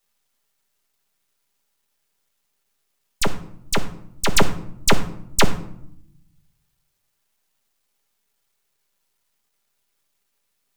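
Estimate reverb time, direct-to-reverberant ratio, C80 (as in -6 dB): 0.70 s, 5.0 dB, 15.5 dB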